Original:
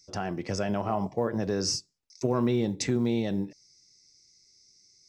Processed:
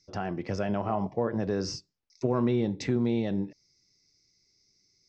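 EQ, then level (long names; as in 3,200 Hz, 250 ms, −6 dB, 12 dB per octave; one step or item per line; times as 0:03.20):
high-frequency loss of the air 160 metres
0.0 dB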